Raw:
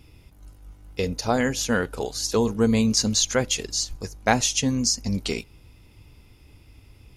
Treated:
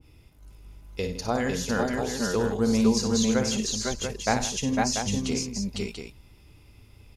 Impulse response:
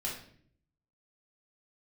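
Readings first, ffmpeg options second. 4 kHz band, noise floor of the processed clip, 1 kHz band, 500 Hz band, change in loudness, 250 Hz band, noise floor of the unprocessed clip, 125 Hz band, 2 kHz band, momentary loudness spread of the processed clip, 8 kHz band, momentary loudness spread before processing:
-5.0 dB, -55 dBFS, -1.5 dB, -1.5 dB, -3.0 dB, -0.5 dB, -53 dBFS, -2.5 dB, -3.5 dB, 11 LU, -5.0 dB, 9 LU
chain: -af "aecho=1:1:58|95|161|501|506|688:0.398|0.178|0.178|0.422|0.708|0.447,adynamicequalizer=threshold=0.0141:dfrequency=1600:dqfactor=0.7:tfrequency=1600:tqfactor=0.7:attack=5:release=100:ratio=0.375:range=2:mode=cutabove:tftype=highshelf,volume=0.596"

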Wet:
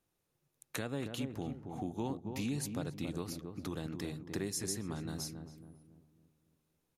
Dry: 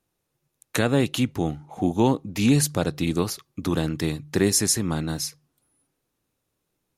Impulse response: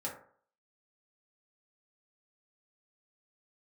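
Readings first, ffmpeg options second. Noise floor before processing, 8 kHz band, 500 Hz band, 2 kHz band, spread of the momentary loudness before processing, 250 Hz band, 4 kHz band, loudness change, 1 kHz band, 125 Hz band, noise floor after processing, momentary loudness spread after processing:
-78 dBFS, -16.5 dB, -16.0 dB, -15.5 dB, 9 LU, -15.5 dB, -15.5 dB, -16.0 dB, -15.5 dB, -15.0 dB, -82 dBFS, 6 LU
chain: -filter_complex "[0:a]acompressor=threshold=0.01:ratio=2,asplit=2[s0][s1];[s1]adelay=276,lowpass=f=840:p=1,volume=0.562,asplit=2[s2][s3];[s3]adelay=276,lowpass=f=840:p=1,volume=0.45,asplit=2[s4][s5];[s5]adelay=276,lowpass=f=840:p=1,volume=0.45,asplit=2[s6][s7];[s7]adelay=276,lowpass=f=840:p=1,volume=0.45,asplit=2[s8][s9];[s9]adelay=276,lowpass=f=840:p=1,volume=0.45,asplit=2[s10][s11];[s11]adelay=276,lowpass=f=840:p=1,volume=0.45[s12];[s2][s4][s6][s8][s10][s12]amix=inputs=6:normalize=0[s13];[s0][s13]amix=inputs=2:normalize=0,volume=0.562"

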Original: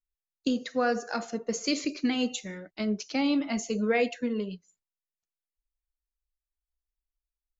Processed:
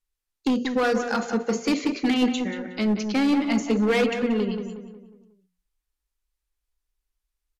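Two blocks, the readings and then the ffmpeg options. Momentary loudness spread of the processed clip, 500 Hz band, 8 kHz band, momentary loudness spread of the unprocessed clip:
8 LU, +5.0 dB, no reading, 8 LU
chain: -filter_complex "[0:a]equalizer=f=640:w=5.6:g=-7,bandreject=f=60:t=h:w=6,bandreject=f=120:t=h:w=6,bandreject=f=180:t=h:w=6,bandreject=f=240:t=h:w=6,acrossover=split=3300[s0][s1];[s1]acompressor=threshold=0.00398:ratio=6[s2];[s0][s2]amix=inputs=2:normalize=0,asoftclip=type=hard:threshold=0.0501,asplit=2[s3][s4];[s4]adelay=182,lowpass=f=2200:p=1,volume=0.447,asplit=2[s5][s6];[s6]adelay=182,lowpass=f=2200:p=1,volume=0.45,asplit=2[s7][s8];[s8]adelay=182,lowpass=f=2200:p=1,volume=0.45,asplit=2[s9][s10];[s10]adelay=182,lowpass=f=2200:p=1,volume=0.45,asplit=2[s11][s12];[s12]adelay=182,lowpass=f=2200:p=1,volume=0.45[s13];[s5][s7][s9][s11][s13]amix=inputs=5:normalize=0[s14];[s3][s14]amix=inputs=2:normalize=0,aresample=32000,aresample=44100,volume=2.51"

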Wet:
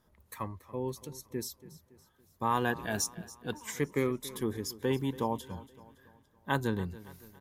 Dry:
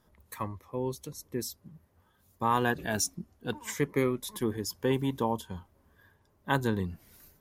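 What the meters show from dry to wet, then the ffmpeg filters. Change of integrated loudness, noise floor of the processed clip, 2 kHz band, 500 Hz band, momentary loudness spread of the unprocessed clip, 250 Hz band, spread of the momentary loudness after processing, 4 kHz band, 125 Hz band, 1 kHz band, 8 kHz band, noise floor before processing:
-2.5 dB, -68 dBFS, -2.5 dB, -2.5 dB, 14 LU, -2.5 dB, 17 LU, -2.5 dB, -2.5 dB, -2.5 dB, -2.5 dB, -68 dBFS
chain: -af "aecho=1:1:281|562|843|1124:0.126|0.0579|0.0266|0.0123,volume=0.75"

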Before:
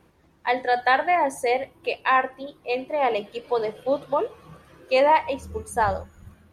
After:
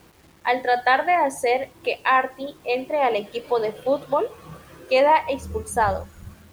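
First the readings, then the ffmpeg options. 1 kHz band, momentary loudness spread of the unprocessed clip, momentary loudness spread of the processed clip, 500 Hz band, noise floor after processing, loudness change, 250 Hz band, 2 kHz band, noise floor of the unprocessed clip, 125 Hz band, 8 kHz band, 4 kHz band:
+1.5 dB, 11 LU, 10 LU, +2.0 dB, -52 dBFS, +1.5 dB, +2.0 dB, +1.5 dB, -59 dBFS, +3.0 dB, no reading, +2.0 dB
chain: -filter_complex "[0:a]asplit=2[s0][s1];[s1]acompressor=threshold=0.0282:ratio=6,volume=0.841[s2];[s0][s2]amix=inputs=2:normalize=0,acrusher=bits=8:mix=0:aa=0.000001"

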